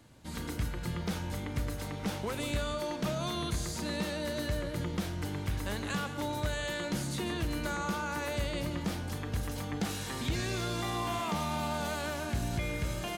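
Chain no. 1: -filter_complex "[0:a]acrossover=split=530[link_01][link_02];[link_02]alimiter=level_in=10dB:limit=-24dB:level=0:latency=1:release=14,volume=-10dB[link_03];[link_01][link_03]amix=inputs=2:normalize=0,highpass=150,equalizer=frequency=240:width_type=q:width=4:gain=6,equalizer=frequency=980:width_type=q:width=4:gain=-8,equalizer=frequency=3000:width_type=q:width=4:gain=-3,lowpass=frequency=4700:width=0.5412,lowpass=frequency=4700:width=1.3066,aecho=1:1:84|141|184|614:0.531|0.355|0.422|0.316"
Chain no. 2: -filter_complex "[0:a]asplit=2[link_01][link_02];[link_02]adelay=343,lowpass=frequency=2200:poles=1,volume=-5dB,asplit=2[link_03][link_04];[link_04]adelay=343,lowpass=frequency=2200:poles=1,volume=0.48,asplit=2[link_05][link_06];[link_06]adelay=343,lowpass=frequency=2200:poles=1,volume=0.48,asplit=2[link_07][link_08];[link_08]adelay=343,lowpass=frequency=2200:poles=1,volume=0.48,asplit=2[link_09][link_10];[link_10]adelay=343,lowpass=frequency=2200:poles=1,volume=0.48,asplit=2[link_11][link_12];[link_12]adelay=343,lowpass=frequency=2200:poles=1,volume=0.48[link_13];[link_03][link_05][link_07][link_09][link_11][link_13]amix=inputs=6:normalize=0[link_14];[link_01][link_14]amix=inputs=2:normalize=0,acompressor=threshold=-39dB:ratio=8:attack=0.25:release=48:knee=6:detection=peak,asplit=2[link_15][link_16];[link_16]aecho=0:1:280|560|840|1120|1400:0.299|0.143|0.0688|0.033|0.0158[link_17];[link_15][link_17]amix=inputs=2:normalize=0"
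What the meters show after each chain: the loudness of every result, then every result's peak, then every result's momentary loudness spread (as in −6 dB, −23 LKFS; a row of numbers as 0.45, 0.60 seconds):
−35.0, −44.0 LKFS; −20.0, −33.0 dBFS; 4, 1 LU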